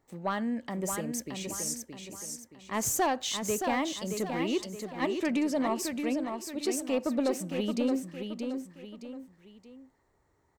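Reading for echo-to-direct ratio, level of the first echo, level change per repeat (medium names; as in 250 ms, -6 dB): -5.5 dB, -6.0 dB, -8.0 dB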